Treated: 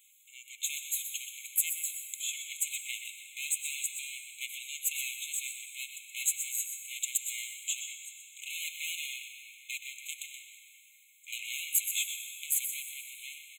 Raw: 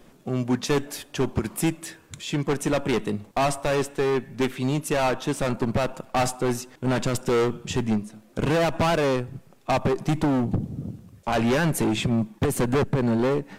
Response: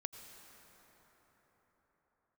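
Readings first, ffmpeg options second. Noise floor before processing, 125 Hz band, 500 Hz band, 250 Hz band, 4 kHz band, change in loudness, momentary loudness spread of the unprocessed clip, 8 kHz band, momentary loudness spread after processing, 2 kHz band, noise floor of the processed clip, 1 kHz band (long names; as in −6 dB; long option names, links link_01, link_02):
−54 dBFS, below −40 dB, below −40 dB, below −40 dB, −3.5 dB, −9.0 dB, 7 LU, +4.5 dB, 14 LU, −7.5 dB, −60 dBFS, below −40 dB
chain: -filter_complex "[0:a]highpass=950,aeval=exprs='0.2*(cos(1*acos(clip(val(0)/0.2,-1,1)))-cos(1*PI/2))+0.0251*(cos(3*acos(clip(val(0)/0.2,-1,1)))-cos(3*PI/2))+0.0178*(cos(4*acos(clip(val(0)/0.2,-1,1)))-cos(4*PI/2))':channel_layout=same,asoftclip=type=tanh:threshold=-21.5dB,aexciter=amount=3.8:drive=4.2:freq=6100,aecho=1:1:125:0.335[link_01];[1:a]atrim=start_sample=2205[link_02];[link_01][link_02]afir=irnorm=-1:irlink=0,afftfilt=real='re*eq(mod(floor(b*sr/1024/2100),2),1)':imag='im*eq(mod(floor(b*sr/1024/2100),2),1)':win_size=1024:overlap=0.75,volume=4.5dB"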